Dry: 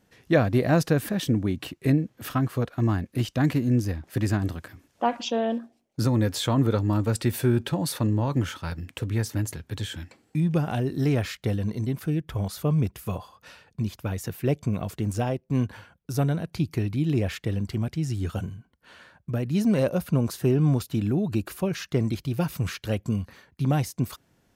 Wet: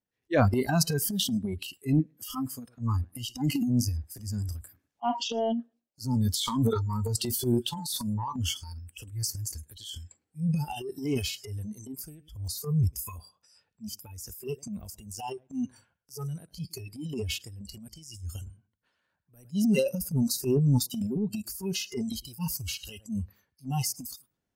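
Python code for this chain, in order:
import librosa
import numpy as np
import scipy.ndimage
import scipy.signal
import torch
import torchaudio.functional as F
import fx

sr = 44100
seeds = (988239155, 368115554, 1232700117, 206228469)

p1 = x + fx.echo_feedback(x, sr, ms=106, feedback_pct=23, wet_db=-19.5, dry=0)
p2 = fx.noise_reduce_blind(p1, sr, reduce_db=28)
y = fx.transient(p2, sr, attack_db=-8, sustain_db=9)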